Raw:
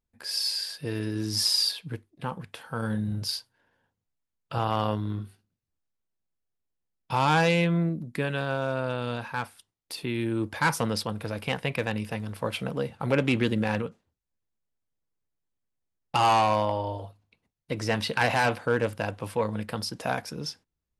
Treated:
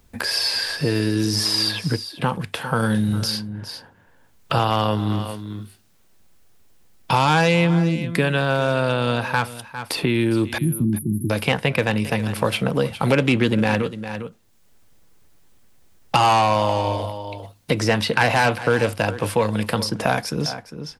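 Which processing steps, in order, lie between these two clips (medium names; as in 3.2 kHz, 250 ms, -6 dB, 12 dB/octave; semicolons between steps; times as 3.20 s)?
10.58–11.30 s: brick-wall FIR band-stop 390–9700 Hz; delay 403 ms -17.5 dB; three bands compressed up and down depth 70%; trim +8 dB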